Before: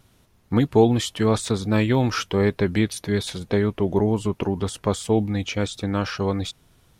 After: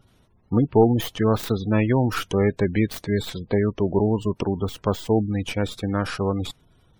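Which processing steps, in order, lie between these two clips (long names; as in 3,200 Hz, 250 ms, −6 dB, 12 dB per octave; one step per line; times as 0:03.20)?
stylus tracing distortion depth 0.2 ms
gate on every frequency bin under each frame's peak −25 dB strong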